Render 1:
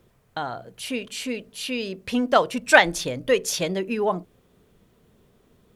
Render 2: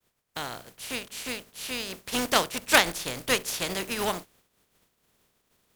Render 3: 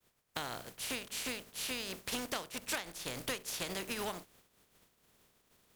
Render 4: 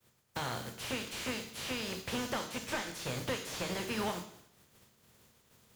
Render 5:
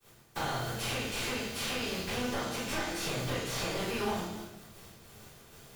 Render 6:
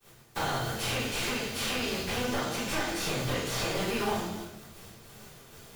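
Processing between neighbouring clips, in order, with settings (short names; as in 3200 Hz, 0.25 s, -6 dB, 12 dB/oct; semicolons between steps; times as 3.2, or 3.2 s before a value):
spectral contrast lowered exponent 0.41; expander -53 dBFS; gain -5 dB
compressor 10:1, threshold -35 dBFS, peak gain reduction 22 dB
on a send at -6.5 dB: reverb RT60 0.70 s, pre-delay 3 ms; on the sum: slew limiter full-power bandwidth 33 Hz; gain +3 dB
compressor, threshold -43 dBFS, peak gain reduction 12.5 dB; shoebox room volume 140 m³, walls mixed, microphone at 3.6 m
block floating point 5-bit; flange 0.76 Hz, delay 4.6 ms, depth 9.4 ms, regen -46%; gain +7 dB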